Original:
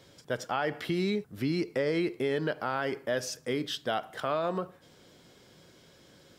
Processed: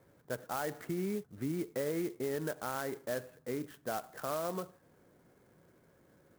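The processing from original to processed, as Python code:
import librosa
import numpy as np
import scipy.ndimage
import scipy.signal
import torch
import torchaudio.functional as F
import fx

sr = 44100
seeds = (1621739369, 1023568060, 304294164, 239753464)

y = scipy.signal.sosfilt(scipy.signal.butter(4, 2000.0, 'lowpass', fs=sr, output='sos'), x)
y = fx.clock_jitter(y, sr, seeds[0], jitter_ms=0.057)
y = y * 10.0 ** (-6.0 / 20.0)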